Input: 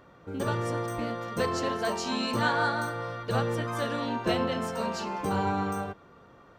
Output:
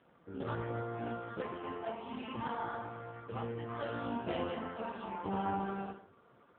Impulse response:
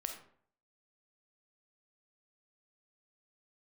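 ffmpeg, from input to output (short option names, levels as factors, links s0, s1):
-filter_complex "[0:a]asplit=3[s0][s1][s2];[s0]afade=t=out:st=1.41:d=0.02[s3];[s1]highpass=120,equalizer=f=200:t=q:w=4:g=-4,equalizer=f=330:t=q:w=4:g=-3,equalizer=f=580:t=q:w=4:g=-10,equalizer=f=1500:t=q:w=4:g=-10,lowpass=f=3100:w=0.5412,lowpass=f=3100:w=1.3066,afade=t=in:st=1.41:d=0.02,afade=t=out:st=3.68:d=0.02[s4];[s2]afade=t=in:st=3.68:d=0.02[s5];[s3][s4][s5]amix=inputs=3:normalize=0[s6];[1:a]atrim=start_sample=2205,afade=t=out:st=0.39:d=0.01,atrim=end_sample=17640,asetrate=48510,aresample=44100[s7];[s6][s7]afir=irnorm=-1:irlink=0,volume=0.596" -ar 8000 -c:a libopencore_amrnb -b:a 5150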